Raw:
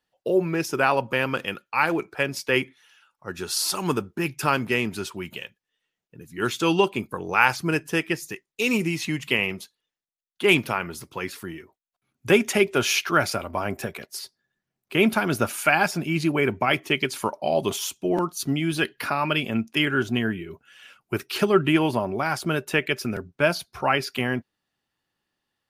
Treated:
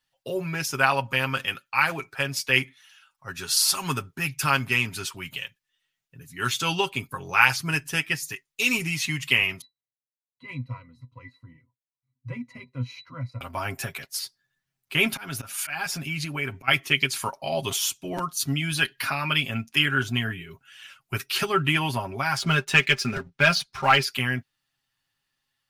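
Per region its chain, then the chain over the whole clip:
9.61–13.41 s: bass shelf 120 Hz +11 dB + transient shaper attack -2 dB, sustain -7 dB + pitch-class resonator B, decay 0.11 s
15.12–16.68 s: slow attack 236 ms + compression 2:1, threshold -28 dBFS
22.37–24.03 s: low-pass 6.6 kHz + comb 5 ms, depth 48% + waveshaping leveller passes 1
whole clip: peaking EQ 390 Hz -14 dB 2.3 oct; comb 7.4 ms, depth 62%; trim +3 dB

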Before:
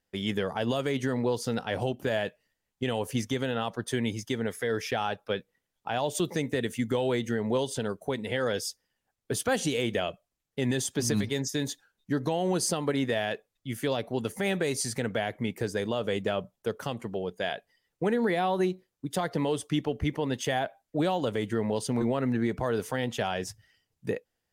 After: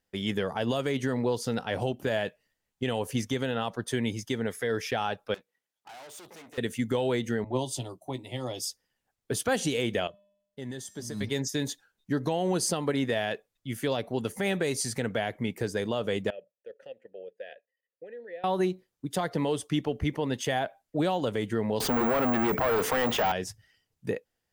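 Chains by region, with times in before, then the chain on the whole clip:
5.34–6.58 s: valve stage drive 43 dB, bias 0.7 + high-pass 510 Hz 6 dB/octave
7.44–8.65 s: static phaser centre 310 Hz, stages 8 + doubling 16 ms -10.5 dB + three bands expanded up and down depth 70%
10.07–11.21 s: peaking EQ 2.5 kHz -13 dB 0.2 oct + feedback comb 200 Hz, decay 0.82 s, harmonics odd, mix 70%
16.30–18.44 s: level held to a coarse grid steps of 11 dB + vowel filter e
21.80–23.32 s: careless resampling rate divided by 2×, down none, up zero stuff + overdrive pedal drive 24 dB, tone 1.3 kHz, clips at -11 dBFS + level flattener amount 50%
whole clip: none

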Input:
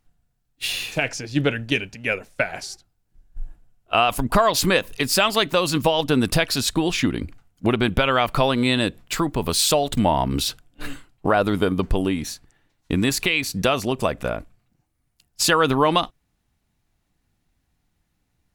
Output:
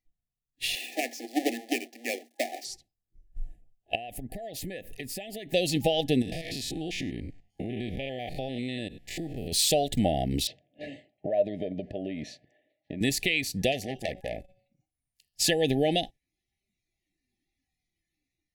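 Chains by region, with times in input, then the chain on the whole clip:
0.75–2.65 s: square wave that keeps the level + rippled Chebyshev high-pass 230 Hz, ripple 9 dB
3.95–5.53 s: peaking EQ 4.9 kHz -9 dB 1.7 oct + compression 8:1, threshold -29 dBFS
6.22–9.52 s: spectrogram pixelated in time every 100 ms + treble shelf 5.6 kHz -5.5 dB + compression 5:1, threshold -25 dBFS
10.47–13.01 s: compression 16:1, threshold -25 dBFS + band-pass 120–3100 Hz + small resonant body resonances 610/940 Hz, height 18 dB, ringing for 65 ms
13.72–15.41 s: peaking EQ 350 Hz -5.5 dB 0.3 oct + de-hum 186 Hz, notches 33 + transformer saturation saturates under 2 kHz
whole clip: spectral noise reduction 13 dB; FFT band-reject 810–1700 Hz; level rider gain up to 4 dB; trim -8 dB

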